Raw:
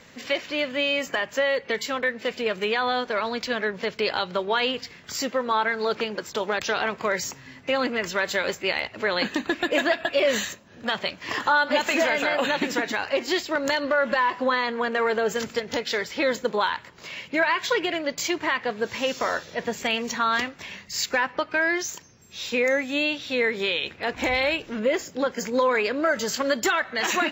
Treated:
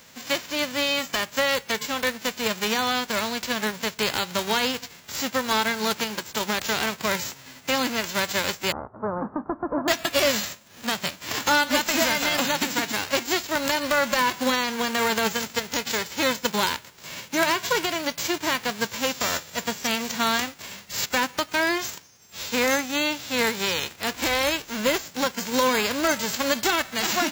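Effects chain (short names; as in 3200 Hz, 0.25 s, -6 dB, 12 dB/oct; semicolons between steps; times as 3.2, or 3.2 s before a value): spectral whitening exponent 0.3; 8.72–9.88 steep low-pass 1300 Hz 48 dB/oct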